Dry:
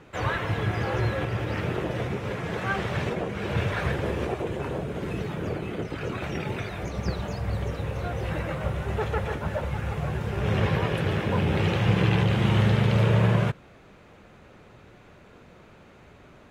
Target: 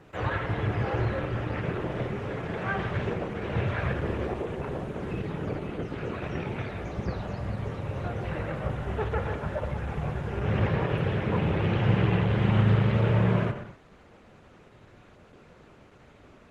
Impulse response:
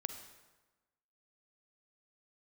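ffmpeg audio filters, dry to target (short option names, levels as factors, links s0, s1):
-filter_complex "[0:a]acrossover=split=3300[s0][s1];[s1]acompressor=threshold=0.00141:ratio=4:attack=1:release=60[s2];[s0][s2]amix=inputs=2:normalize=0[s3];[1:a]atrim=start_sample=2205,afade=t=out:st=0.3:d=0.01,atrim=end_sample=13671[s4];[s3][s4]afir=irnorm=-1:irlink=0" -ar 48000 -c:a libopus -b:a 16k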